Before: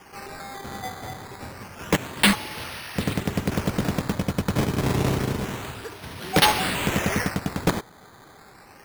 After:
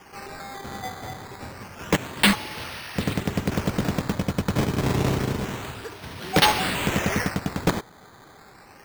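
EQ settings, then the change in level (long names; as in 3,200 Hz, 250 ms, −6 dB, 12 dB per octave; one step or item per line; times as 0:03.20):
parametric band 11,000 Hz −7 dB 0.27 octaves
0.0 dB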